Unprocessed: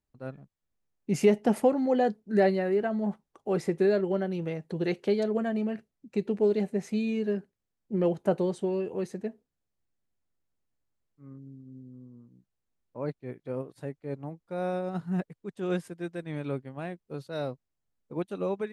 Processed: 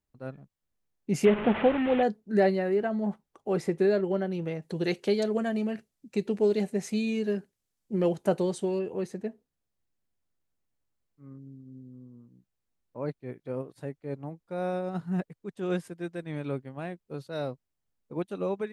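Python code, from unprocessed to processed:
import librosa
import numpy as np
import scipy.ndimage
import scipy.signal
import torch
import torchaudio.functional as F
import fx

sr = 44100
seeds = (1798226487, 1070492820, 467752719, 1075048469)

y = fx.delta_mod(x, sr, bps=16000, step_db=-26.5, at=(1.25, 2.03))
y = fx.peak_eq(y, sr, hz=9100.0, db=8.5, octaves=2.6, at=(4.62, 8.79))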